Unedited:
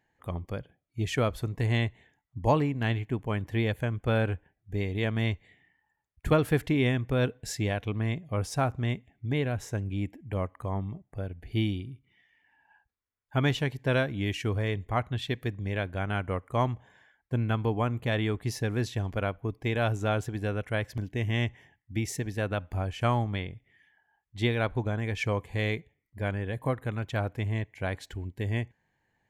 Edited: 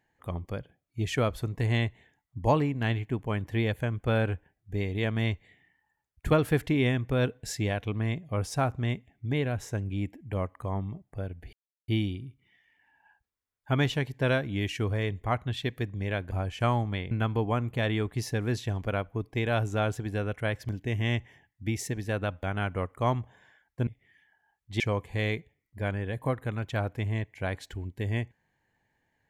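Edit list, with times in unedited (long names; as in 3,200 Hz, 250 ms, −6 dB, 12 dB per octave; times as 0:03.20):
0:11.53: splice in silence 0.35 s
0:15.96–0:17.40: swap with 0:22.72–0:23.52
0:24.45–0:25.20: remove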